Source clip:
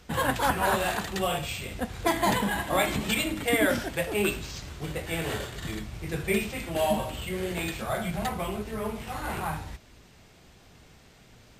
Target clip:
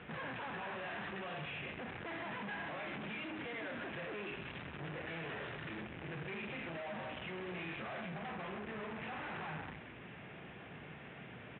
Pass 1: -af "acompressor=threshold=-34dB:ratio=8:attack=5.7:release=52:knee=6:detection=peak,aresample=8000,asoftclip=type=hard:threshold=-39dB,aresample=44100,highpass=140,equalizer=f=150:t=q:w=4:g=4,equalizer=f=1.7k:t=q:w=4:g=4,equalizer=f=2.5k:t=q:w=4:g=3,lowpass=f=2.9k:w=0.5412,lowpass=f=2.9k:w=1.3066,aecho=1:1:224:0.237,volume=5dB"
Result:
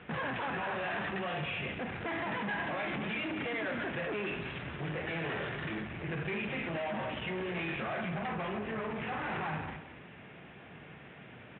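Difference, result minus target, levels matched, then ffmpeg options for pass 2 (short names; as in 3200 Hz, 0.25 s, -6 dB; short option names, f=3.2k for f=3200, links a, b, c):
echo 94 ms late; hard clip: distortion -4 dB
-af "acompressor=threshold=-34dB:ratio=8:attack=5.7:release=52:knee=6:detection=peak,aresample=8000,asoftclip=type=hard:threshold=-48dB,aresample=44100,highpass=140,equalizer=f=150:t=q:w=4:g=4,equalizer=f=1.7k:t=q:w=4:g=4,equalizer=f=2.5k:t=q:w=4:g=3,lowpass=f=2.9k:w=0.5412,lowpass=f=2.9k:w=1.3066,aecho=1:1:130:0.237,volume=5dB"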